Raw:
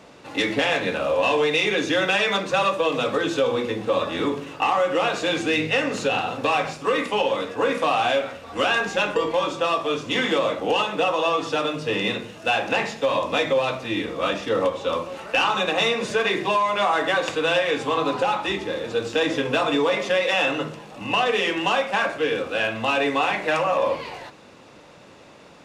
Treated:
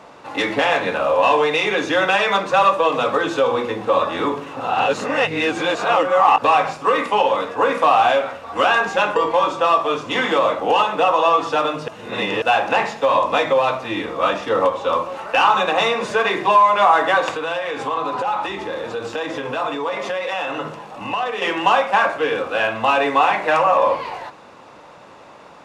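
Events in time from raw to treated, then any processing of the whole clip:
4.56–6.42 s: reverse
11.88–12.42 s: reverse
17.36–21.42 s: compression 4:1, threshold -25 dBFS
whole clip: peaking EQ 970 Hz +10.5 dB 1.6 oct; trim -1 dB

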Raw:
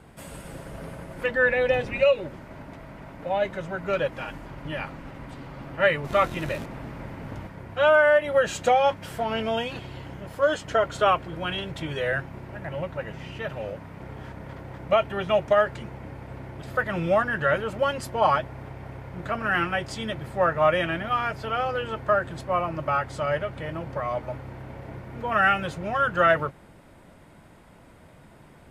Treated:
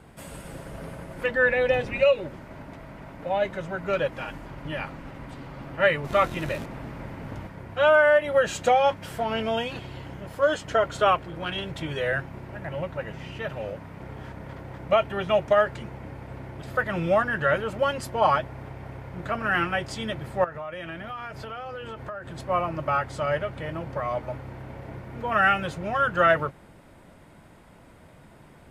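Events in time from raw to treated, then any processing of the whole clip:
11.15–11.56 s: transformer saturation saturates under 600 Hz
20.44–22.40 s: compression, threshold -33 dBFS

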